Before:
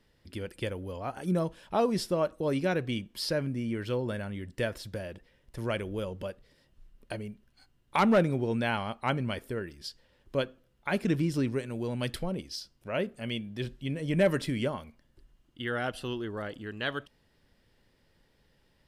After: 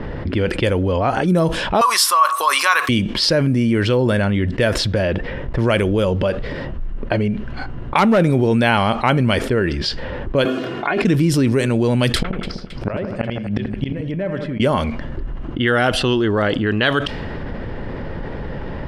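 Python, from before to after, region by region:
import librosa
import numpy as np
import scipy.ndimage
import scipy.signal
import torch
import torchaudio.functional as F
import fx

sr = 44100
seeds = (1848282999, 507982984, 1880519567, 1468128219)

y = fx.chain(x, sr, fx.highpass_res(hz=1100.0, q=12.0),
    fx.tilt_eq(slope=3.5), at=(1.81, 2.89))
y = fx.chain(y, sr, fx.highpass(hz=150.0, slope=24),
    fx.comb(ms=2.8, depth=0.64),
    fx.over_compress(threshold_db=-39.0, ratio=-1.0), at=(10.45, 11.02))
y = fx.chain(y, sr, fx.high_shelf(hz=3400.0, db=8.0),
    fx.gate_flip(shuts_db=-29.0, range_db=-29),
    fx.echo_split(split_hz=2500.0, low_ms=84, high_ms=270, feedback_pct=52, wet_db=-11.5), at=(12.16, 14.6))
y = fx.env_lowpass(y, sr, base_hz=1300.0, full_db=-27.0)
y = fx.env_flatten(y, sr, amount_pct=70)
y = y * librosa.db_to_amplitude(3.0)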